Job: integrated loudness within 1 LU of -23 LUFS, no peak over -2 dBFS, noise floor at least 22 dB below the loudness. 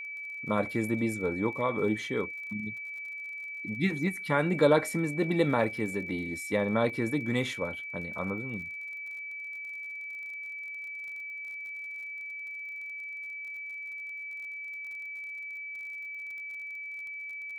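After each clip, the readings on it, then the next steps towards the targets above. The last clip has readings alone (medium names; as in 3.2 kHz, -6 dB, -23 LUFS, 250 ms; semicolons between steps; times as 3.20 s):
tick rate 39 per s; steady tone 2.3 kHz; tone level -37 dBFS; loudness -32.5 LUFS; peak level -10.5 dBFS; loudness target -23.0 LUFS
-> de-click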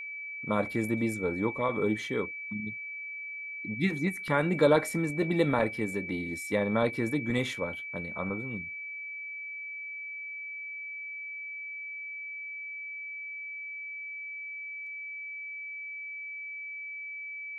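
tick rate 0.057 per s; steady tone 2.3 kHz; tone level -37 dBFS
-> band-stop 2.3 kHz, Q 30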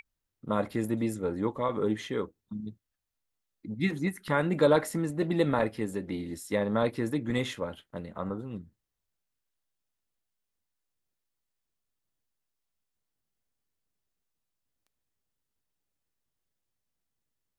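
steady tone not found; loudness -30.5 LUFS; peak level -11.0 dBFS; loudness target -23.0 LUFS
-> trim +7.5 dB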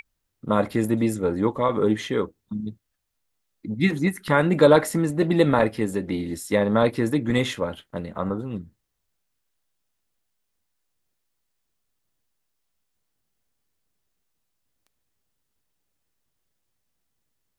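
loudness -23.0 LUFS; peak level -3.5 dBFS; noise floor -77 dBFS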